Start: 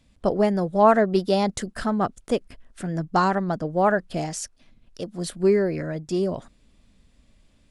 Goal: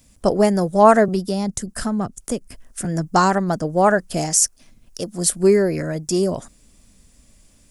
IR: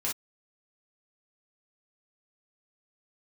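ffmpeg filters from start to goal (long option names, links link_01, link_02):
-filter_complex "[0:a]aexciter=amount=5.7:drive=2.7:freq=5300,asettb=1/sr,asplit=3[link_01][link_02][link_03];[link_01]atrim=end=1.084[link_04];[link_02]atrim=start=1.08:end=2.85,asetpts=PTS-STARTPTS,afade=type=in:duration=0.004:curve=qsin,afade=type=out:start_time=1.766:duration=0.004:curve=qsin,acrossover=split=240[link_05][link_06];[link_06]acompressor=threshold=-30dB:ratio=6[link_07];[link_05][link_07]amix=inputs=2:normalize=0[link_08];[link_03]atrim=start=2.846[link_09];[link_04][link_08]acrossfade=duration=0.004:curve1=hsin:curve2=qsin[link_10];[link_10][link_09]acrossfade=duration=0.004:curve1=qsin:curve2=hsin,volume=4.5dB"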